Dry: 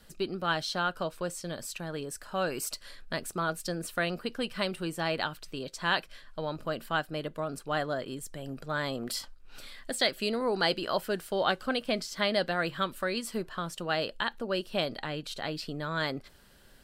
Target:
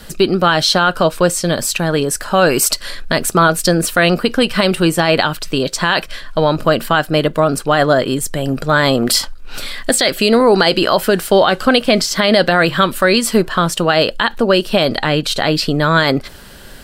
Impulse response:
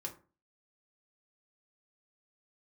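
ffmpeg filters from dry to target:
-af "atempo=1,alimiter=level_in=22dB:limit=-1dB:release=50:level=0:latency=1,volume=-1dB"

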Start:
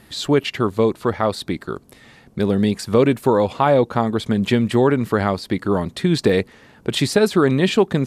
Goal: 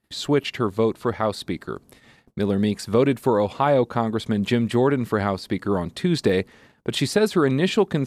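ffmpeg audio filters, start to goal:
-af "agate=range=-25dB:threshold=-46dB:ratio=16:detection=peak,volume=-3.5dB"

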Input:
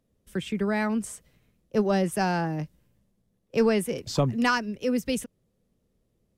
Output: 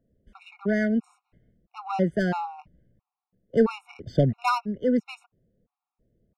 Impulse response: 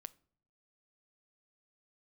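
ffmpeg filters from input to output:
-af "adynamicsmooth=sensitivity=1.5:basefreq=1.6k,afftfilt=real='re*gt(sin(2*PI*1.5*pts/sr)*(1-2*mod(floor(b*sr/1024/730),2)),0)':imag='im*gt(sin(2*PI*1.5*pts/sr)*(1-2*mod(floor(b*sr/1024/730),2)),0)':win_size=1024:overlap=0.75,volume=3.5dB"

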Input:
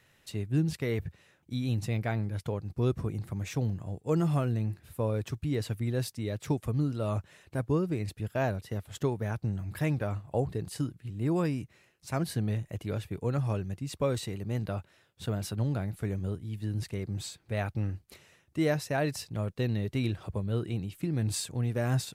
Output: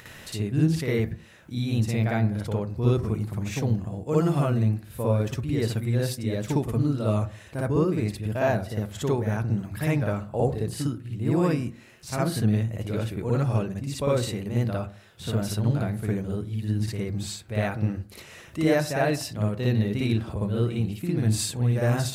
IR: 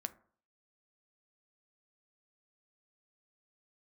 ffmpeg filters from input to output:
-filter_complex "[0:a]acompressor=mode=upward:threshold=-37dB:ratio=2.5,asplit=2[a][b];[1:a]atrim=start_sample=2205,adelay=57[c];[b][c]afir=irnorm=-1:irlink=0,volume=6.5dB[d];[a][d]amix=inputs=2:normalize=0"

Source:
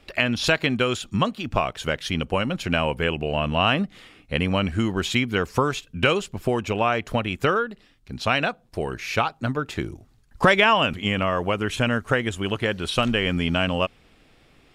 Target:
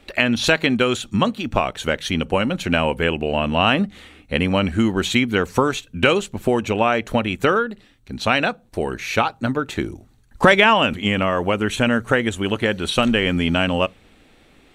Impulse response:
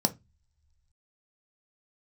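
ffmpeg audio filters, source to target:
-filter_complex "[0:a]equalizer=f=680:w=7.2:g=-2.5,asplit=2[a][b];[1:a]atrim=start_sample=2205,highshelf=f=4k:g=10.5[c];[b][c]afir=irnorm=-1:irlink=0,volume=-24dB[d];[a][d]amix=inputs=2:normalize=0,volume=3dB"

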